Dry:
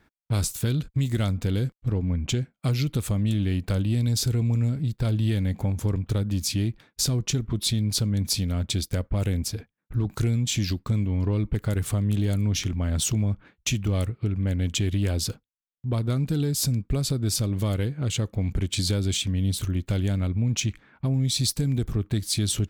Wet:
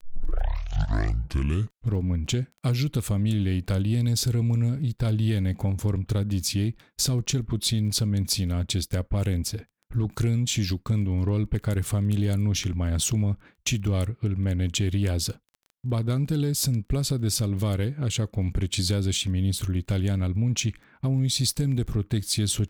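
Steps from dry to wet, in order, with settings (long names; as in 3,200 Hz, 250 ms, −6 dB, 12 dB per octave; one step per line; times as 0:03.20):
turntable start at the beginning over 1.97 s
surface crackle 11 per second −40 dBFS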